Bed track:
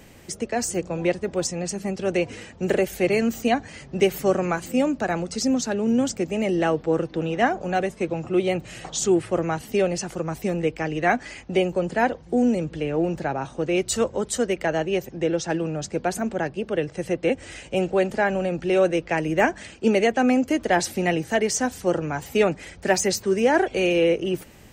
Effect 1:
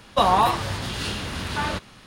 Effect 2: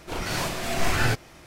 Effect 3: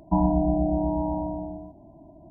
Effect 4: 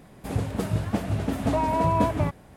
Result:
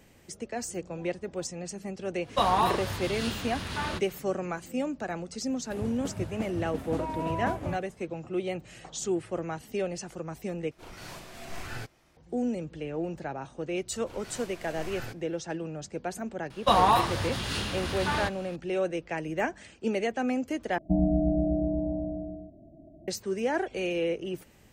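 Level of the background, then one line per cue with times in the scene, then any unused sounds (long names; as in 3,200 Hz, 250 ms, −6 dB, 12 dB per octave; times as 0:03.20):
bed track −9.5 dB
0:02.20: mix in 1 −6 dB, fades 0.10 s
0:05.46: mix in 4 −10 dB
0:10.71: overwrite with 2 −15.5 dB
0:13.98: mix in 2 −17 dB
0:16.50: mix in 1 −3 dB
0:20.78: overwrite with 3 −2 dB + elliptic low-pass filter 650 Hz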